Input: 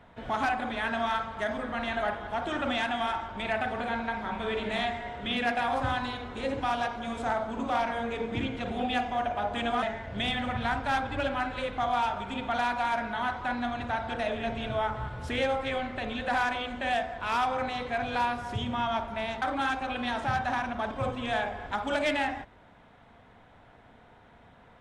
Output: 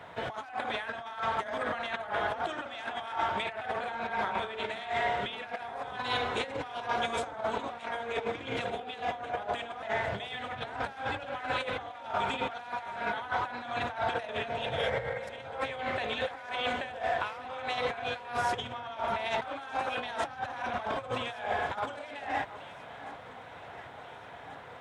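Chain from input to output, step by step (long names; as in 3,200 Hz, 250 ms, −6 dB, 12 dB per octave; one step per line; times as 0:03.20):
healed spectral selection 0:14.57–0:15.36, 430–2,300 Hz both
compressor whose output falls as the input rises −36 dBFS, ratio −0.5
high-pass filter 140 Hz 12 dB per octave
parametric band 230 Hz −12.5 dB 0.75 octaves
on a send: delay that swaps between a low-pass and a high-pass 718 ms, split 1,400 Hz, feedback 76%, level −13.5 dB
on the sum: level +4 dB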